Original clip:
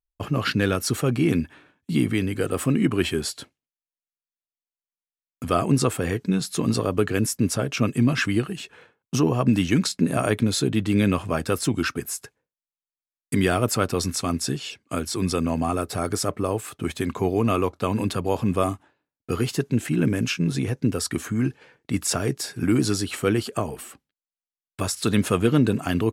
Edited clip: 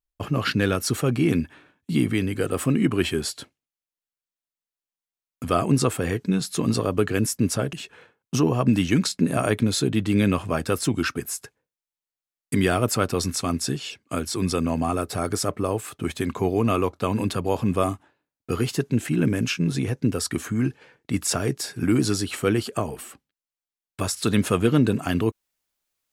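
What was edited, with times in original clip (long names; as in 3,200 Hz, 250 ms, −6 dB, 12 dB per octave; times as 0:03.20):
0:07.73–0:08.53: remove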